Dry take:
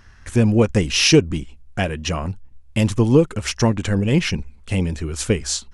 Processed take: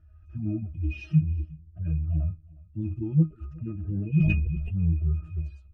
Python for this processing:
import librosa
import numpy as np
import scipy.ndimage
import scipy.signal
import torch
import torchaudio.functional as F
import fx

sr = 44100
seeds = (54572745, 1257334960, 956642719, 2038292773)

y = fx.hpss_only(x, sr, part='harmonic')
y = fx.low_shelf(y, sr, hz=110.0, db=9.0)
y = fx.octave_resonator(y, sr, note='D#', decay_s=0.16)
y = y + 10.0 ** (-24.0 / 20.0) * np.pad(y, (int(363 * sr / 1000.0), 0))[:len(y)]
y = fx.sustainer(y, sr, db_per_s=26.0, at=(4.12, 4.82))